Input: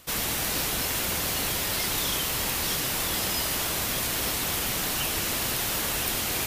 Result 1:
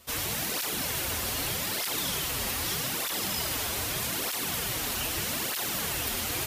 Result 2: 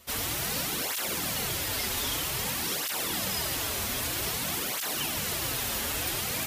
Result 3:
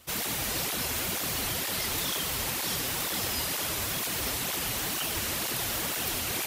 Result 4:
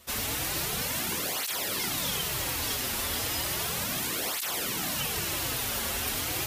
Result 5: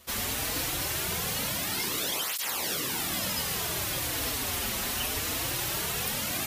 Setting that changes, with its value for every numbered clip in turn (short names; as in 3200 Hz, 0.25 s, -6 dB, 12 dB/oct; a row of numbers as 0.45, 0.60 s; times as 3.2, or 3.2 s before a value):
tape flanging out of phase, nulls at: 0.81, 0.52, 2.1, 0.34, 0.21 Hz